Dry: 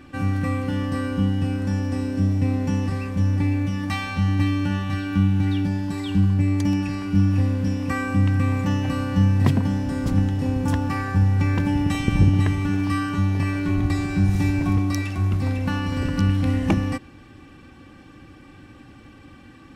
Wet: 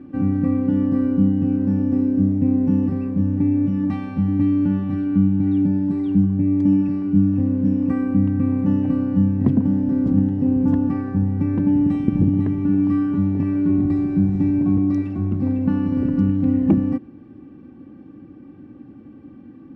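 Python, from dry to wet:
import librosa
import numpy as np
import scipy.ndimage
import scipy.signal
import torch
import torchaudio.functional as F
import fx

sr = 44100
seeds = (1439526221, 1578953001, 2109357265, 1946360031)

p1 = fx.rider(x, sr, range_db=10, speed_s=0.5)
p2 = x + (p1 * 10.0 ** (3.0 / 20.0))
y = fx.bandpass_q(p2, sr, hz=250.0, q=1.6)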